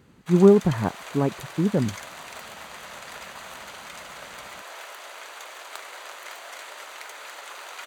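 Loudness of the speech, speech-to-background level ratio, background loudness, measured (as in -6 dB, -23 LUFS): -21.5 LUFS, 17.5 dB, -39.0 LUFS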